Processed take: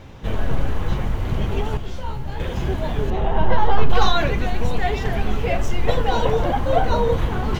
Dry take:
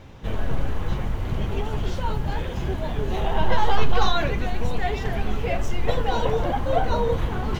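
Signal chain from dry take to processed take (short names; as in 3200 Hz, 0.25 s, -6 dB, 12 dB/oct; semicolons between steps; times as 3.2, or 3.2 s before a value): 1.77–2.4 resonator 65 Hz, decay 0.37 s, harmonics all, mix 80%; 3.1–3.9 LPF 1500 Hz 6 dB/oct; gain +3.5 dB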